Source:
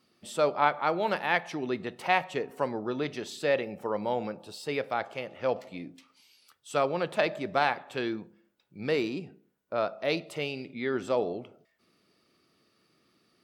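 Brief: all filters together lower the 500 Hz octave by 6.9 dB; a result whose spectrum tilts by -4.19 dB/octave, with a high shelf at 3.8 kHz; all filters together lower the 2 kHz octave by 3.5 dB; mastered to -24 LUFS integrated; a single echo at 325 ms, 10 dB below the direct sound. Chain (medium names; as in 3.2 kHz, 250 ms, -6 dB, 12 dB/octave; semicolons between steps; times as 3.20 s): peaking EQ 500 Hz -8.5 dB; peaking EQ 2 kHz -5 dB; treble shelf 3.8 kHz +4 dB; delay 325 ms -10 dB; trim +10.5 dB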